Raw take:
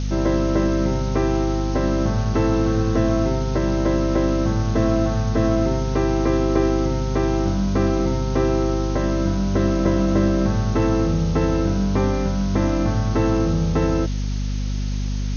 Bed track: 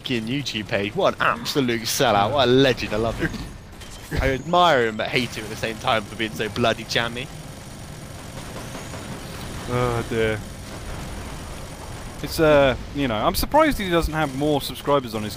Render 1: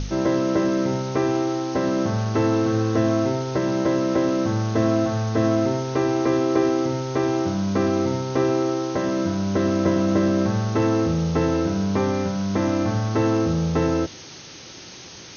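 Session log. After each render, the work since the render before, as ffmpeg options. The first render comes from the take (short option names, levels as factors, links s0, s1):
-af "bandreject=f=50:t=h:w=4,bandreject=f=100:t=h:w=4,bandreject=f=150:t=h:w=4,bandreject=f=200:t=h:w=4,bandreject=f=250:t=h:w=4"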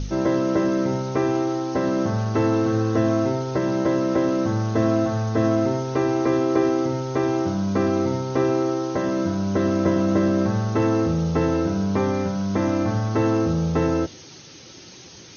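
-af "afftdn=nr=6:nf=-41"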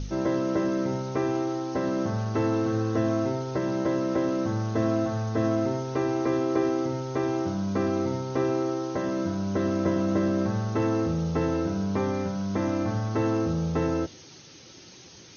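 -af "volume=0.562"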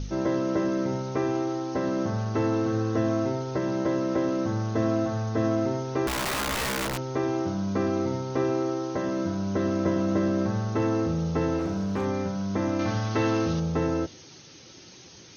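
-filter_complex "[0:a]asettb=1/sr,asplit=3[s0][s1][s2];[s0]atrim=end=6.074[s3];[s1]atrim=start=6.07:end=6.98,asetpts=PTS-STARTPTS,afade=t=in:d=0.004:c=qsin,afade=t=out:st=0.906:d=0.004:c=qsin,aeval=exprs='(mod(15*val(0)+1,2)-1)/15':c=same[s4];[s2]atrim=start=6.976[s5];[s3][s4]acrossfade=d=0.004:c1=hsin:c2=qsin[s6];[s6][s5]acrossfade=d=0.004:c1=qsin:c2=hsin,asettb=1/sr,asplit=3[s7][s8][s9];[s7]atrim=end=11.584[s10];[s8]atrim=start=11.58:end=12.05,asetpts=PTS-STARTPTS,afade=t=in:d=0.004:c=qsin,afade=t=out:st=0.466:d=0.004:c=qsin,asoftclip=type=hard:threshold=0.0668[s11];[s9]atrim=start=12.046[s12];[s10][s11]acrossfade=d=0.004:c1=hsin:c2=qsin[s13];[s13][s12]acrossfade=d=0.004:c1=qsin:c2=hsin,asettb=1/sr,asplit=3[s14][s15][s16];[s14]atrim=end=12.794[s17];[s15]atrim=start=12.79:end=13.6,asetpts=PTS-STARTPTS,afade=t=in:d=0.004:c=qsin,afade=t=out:st=0.806:d=0.004:c=qsin,equalizer=f=3200:w=0.57:g=9[s18];[s16]atrim=start=13.596[s19];[s17][s18]acrossfade=d=0.004:c1=hsin:c2=qsin[s20];[s20][s19]acrossfade=d=0.004:c1=qsin:c2=hsin"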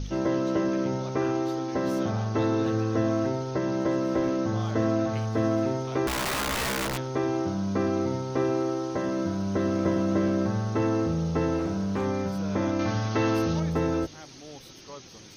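-filter_complex "[1:a]volume=0.0596[s0];[0:a][s0]amix=inputs=2:normalize=0"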